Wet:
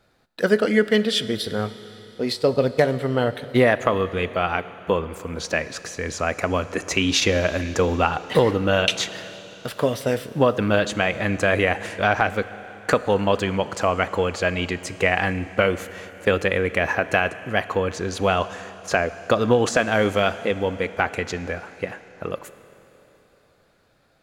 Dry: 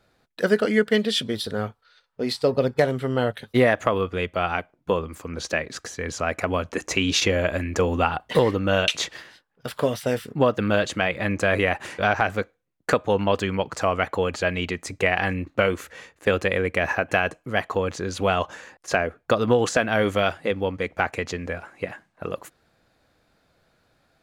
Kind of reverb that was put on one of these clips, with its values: Schroeder reverb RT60 3.8 s, combs from 26 ms, DRR 14 dB; gain +1.5 dB

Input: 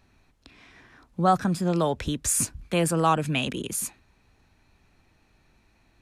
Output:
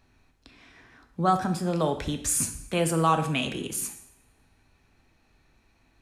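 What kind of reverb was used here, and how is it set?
two-slope reverb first 0.68 s, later 2 s, from -28 dB, DRR 6 dB; gain -2 dB

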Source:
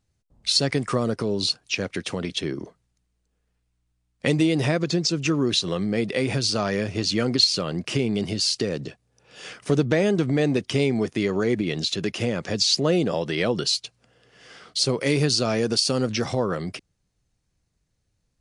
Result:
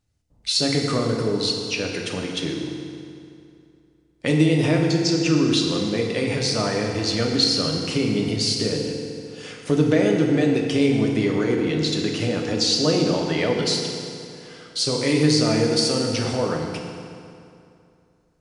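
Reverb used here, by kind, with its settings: FDN reverb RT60 2.6 s, high-frequency decay 0.75×, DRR 0 dB; gain -1.5 dB

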